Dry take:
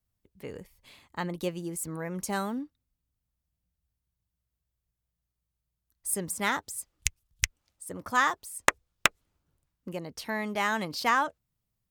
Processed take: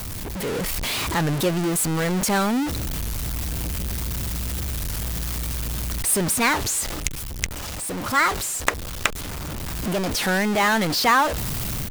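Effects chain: zero-crossing step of -25 dBFS; AGC gain up to 5 dB; record warp 33 1/3 rpm, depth 250 cents

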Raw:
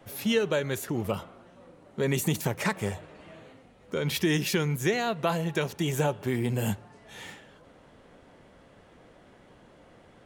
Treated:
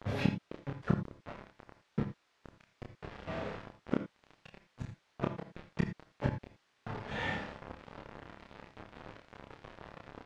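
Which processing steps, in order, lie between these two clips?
bell 350 Hz -8.5 dB 0.34 oct; de-hum 57.48 Hz, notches 19; compressor 20:1, threshold -29 dBFS, peak gain reduction 8.5 dB; flipped gate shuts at -26 dBFS, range -26 dB; 1.06–3.28 flange 1.9 Hz, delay 2.4 ms, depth 10 ms, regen -83%; requantised 8-bit, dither none; added noise blue -66 dBFS; tape spacing loss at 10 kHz 38 dB; doubler 29 ms -2.5 dB; non-linear reverb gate 0.1 s rising, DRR 9 dB; gain +12 dB

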